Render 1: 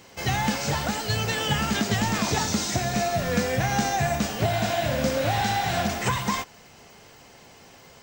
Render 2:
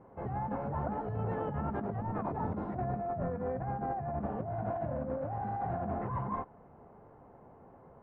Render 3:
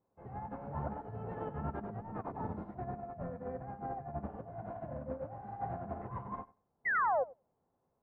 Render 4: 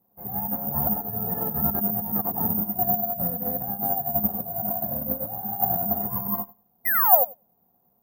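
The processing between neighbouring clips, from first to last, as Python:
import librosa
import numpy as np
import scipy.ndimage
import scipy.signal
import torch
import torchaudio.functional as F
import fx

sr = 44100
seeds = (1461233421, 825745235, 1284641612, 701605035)

y1 = scipy.signal.sosfilt(scipy.signal.butter(4, 1100.0, 'lowpass', fs=sr, output='sos'), x)
y1 = fx.over_compress(y1, sr, threshold_db=-29.0, ratio=-1.0)
y1 = F.gain(torch.from_numpy(y1), -6.0).numpy()
y2 = fx.spec_paint(y1, sr, seeds[0], shape='fall', start_s=6.85, length_s=0.39, low_hz=480.0, high_hz=2100.0, level_db=-30.0)
y2 = fx.echo_feedback(y2, sr, ms=96, feedback_pct=24, wet_db=-8)
y2 = fx.upward_expand(y2, sr, threshold_db=-46.0, expansion=2.5)
y3 = fx.small_body(y2, sr, hz=(200.0, 720.0), ring_ms=55, db=12)
y3 = (np.kron(scipy.signal.resample_poly(y3, 1, 3), np.eye(3)[0]) * 3)[:len(y3)]
y3 = F.gain(torch.from_numpy(y3), 4.5).numpy()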